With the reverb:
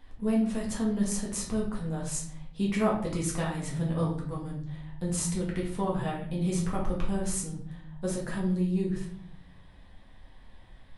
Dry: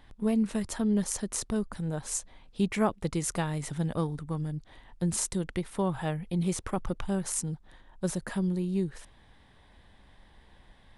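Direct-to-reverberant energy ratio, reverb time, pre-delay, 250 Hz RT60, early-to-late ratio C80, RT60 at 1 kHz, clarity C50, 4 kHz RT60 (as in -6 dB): -4.0 dB, 0.60 s, 4 ms, 1.1 s, 9.5 dB, 0.50 s, 5.5 dB, 0.45 s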